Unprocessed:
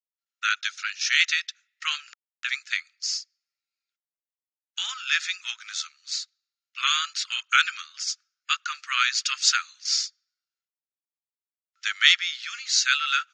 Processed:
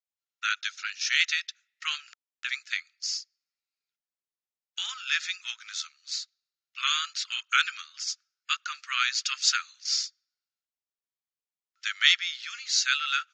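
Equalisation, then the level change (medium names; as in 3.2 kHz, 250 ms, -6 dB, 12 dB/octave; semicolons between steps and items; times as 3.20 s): steep low-pass 8.4 kHz 96 dB/octave; distance through air 59 m; treble shelf 4 kHz +7 dB; -4.5 dB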